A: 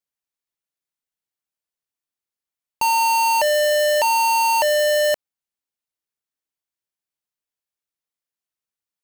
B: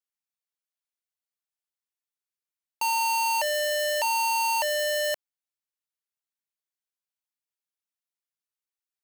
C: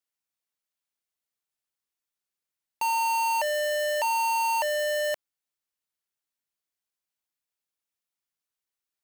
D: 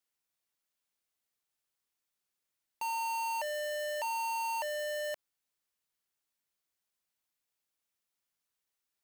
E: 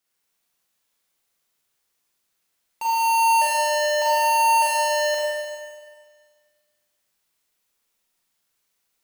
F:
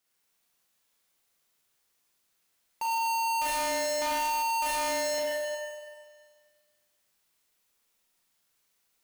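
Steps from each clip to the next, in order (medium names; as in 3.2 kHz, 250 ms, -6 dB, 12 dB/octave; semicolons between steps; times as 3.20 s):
high-pass 900 Hz 6 dB/octave; trim -5 dB
hard clipper -24.5 dBFS, distortion -10 dB; trim +3 dB
peak limiter -32.5 dBFS, peak gain reduction 11 dB; trim +2 dB
Schroeder reverb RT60 1.7 s, combs from 33 ms, DRR -5.5 dB; trim +6 dB
hard clipper -28 dBFS, distortion -6 dB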